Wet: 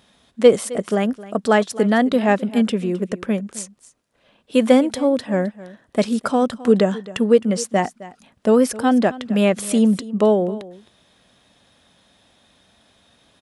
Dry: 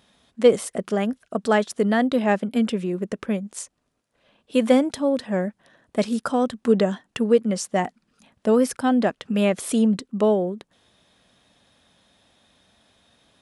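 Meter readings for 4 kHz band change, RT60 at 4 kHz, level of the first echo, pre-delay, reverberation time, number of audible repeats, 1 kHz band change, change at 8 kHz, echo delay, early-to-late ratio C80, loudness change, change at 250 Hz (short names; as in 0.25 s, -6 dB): +3.5 dB, none, -18.0 dB, none, none, 1, +3.5 dB, +3.5 dB, 0.263 s, none, +3.5 dB, +3.5 dB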